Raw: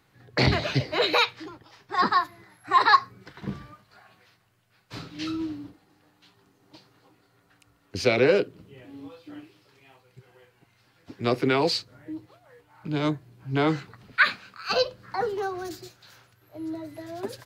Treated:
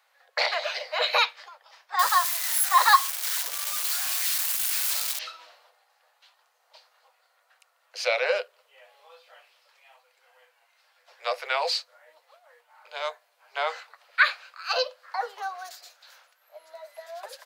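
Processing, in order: 1.99–5.19 s: zero-crossing glitches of -17 dBFS; steep high-pass 520 Hz 72 dB/octave

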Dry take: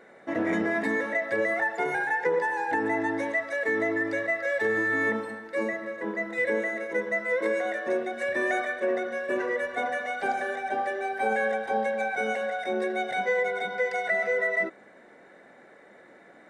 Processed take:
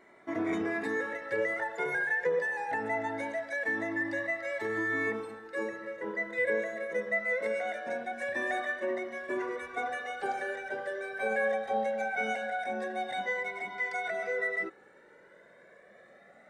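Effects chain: Shepard-style flanger rising 0.22 Hz

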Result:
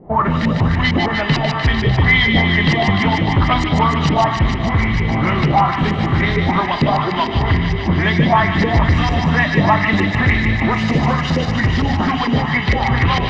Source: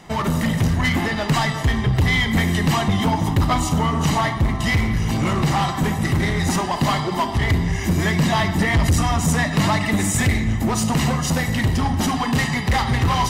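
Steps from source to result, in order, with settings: LFO low-pass saw up 2.2 Hz 390–5400 Hz; distance through air 120 m; feedback echo behind a high-pass 150 ms, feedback 80%, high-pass 1.9 kHz, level -3 dB; trim +3 dB

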